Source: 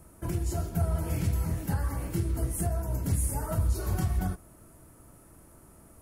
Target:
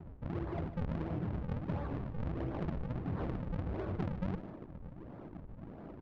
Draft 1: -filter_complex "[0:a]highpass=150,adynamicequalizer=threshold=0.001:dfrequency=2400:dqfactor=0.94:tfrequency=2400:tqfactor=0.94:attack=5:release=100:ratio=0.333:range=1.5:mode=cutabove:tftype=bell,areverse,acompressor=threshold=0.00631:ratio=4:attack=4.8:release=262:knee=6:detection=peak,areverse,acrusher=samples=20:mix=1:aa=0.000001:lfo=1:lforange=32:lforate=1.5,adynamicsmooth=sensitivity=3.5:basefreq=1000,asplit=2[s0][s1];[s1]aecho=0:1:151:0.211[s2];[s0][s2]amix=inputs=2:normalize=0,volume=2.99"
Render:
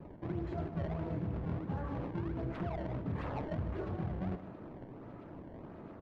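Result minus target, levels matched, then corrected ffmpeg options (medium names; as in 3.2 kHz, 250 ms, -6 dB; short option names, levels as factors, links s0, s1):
decimation with a swept rate: distortion -8 dB
-filter_complex "[0:a]highpass=150,adynamicequalizer=threshold=0.001:dfrequency=2400:dqfactor=0.94:tfrequency=2400:tqfactor=0.94:attack=5:release=100:ratio=0.333:range=1.5:mode=cutabove:tftype=bell,areverse,acompressor=threshold=0.00631:ratio=4:attack=4.8:release=262:knee=6:detection=peak,areverse,acrusher=samples=74:mix=1:aa=0.000001:lfo=1:lforange=118:lforate=1.5,adynamicsmooth=sensitivity=3.5:basefreq=1000,asplit=2[s0][s1];[s1]aecho=0:1:151:0.211[s2];[s0][s2]amix=inputs=2:normalize=0,volume=2.99"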